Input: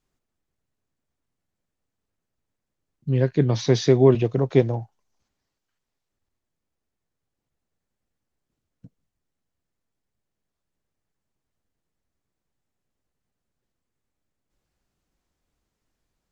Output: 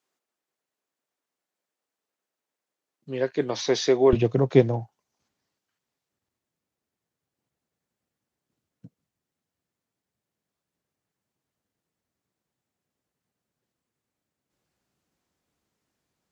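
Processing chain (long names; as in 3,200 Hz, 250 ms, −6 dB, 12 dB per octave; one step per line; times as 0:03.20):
high-pass filter 410 Hz 12 dB per octave, from 0:04.13 110 Hz
level +1 dB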